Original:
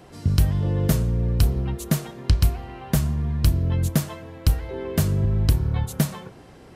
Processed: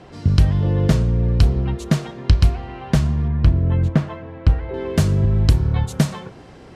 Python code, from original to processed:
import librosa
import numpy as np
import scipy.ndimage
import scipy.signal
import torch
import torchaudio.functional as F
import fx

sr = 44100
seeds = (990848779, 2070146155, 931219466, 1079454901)

y = fx.lowpass(x, sr, hz=fx.steps((0.0, 5200.0), (3.28, 2200.0), (4.74, 7200.0)), slope=12)
y = y * librosa.db_to_amplitude(4.5)